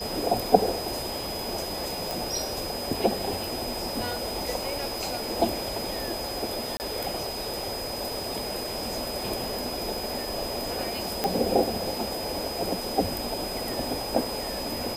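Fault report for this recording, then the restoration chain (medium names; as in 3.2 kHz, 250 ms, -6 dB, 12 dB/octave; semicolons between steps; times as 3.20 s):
whine 5 kHz -35 dBFS
2.11 s: pop
6.77–6.80 s: dropout 29 ms
11.24 s: pop -9 dBFS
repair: de-click; band-stop 5 kHz, Q 30; interpolate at 6.77 s, 29 ms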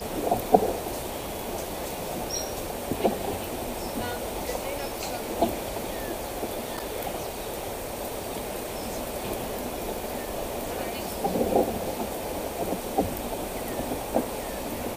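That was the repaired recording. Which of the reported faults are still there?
nothing left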